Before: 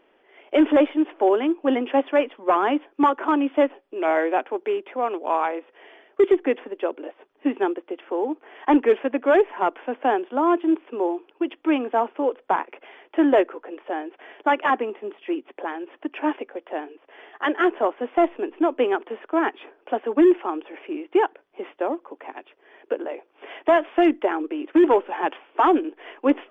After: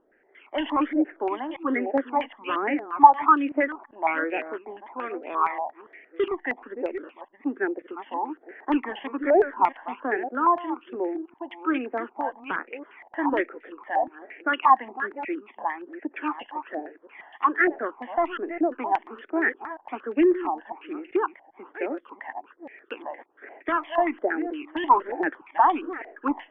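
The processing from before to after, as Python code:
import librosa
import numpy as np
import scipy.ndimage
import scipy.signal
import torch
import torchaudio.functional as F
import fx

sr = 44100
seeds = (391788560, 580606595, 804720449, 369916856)

y = fx.reverse_delay(x, sr, ms=391, wet_db=-11.0)
y = fx.phaser_stages(y, sr, stages=12, low_hz=410.0, high_hz=1100.0, hz=1.2, feedback_pct=25)
y = fx.filter_held_lowpass(y, sr, hz=8.6, low_hz=750.0, high_hz=2800.0)
y = F.gain(torch.from_numpy(y), -3.0).numpy()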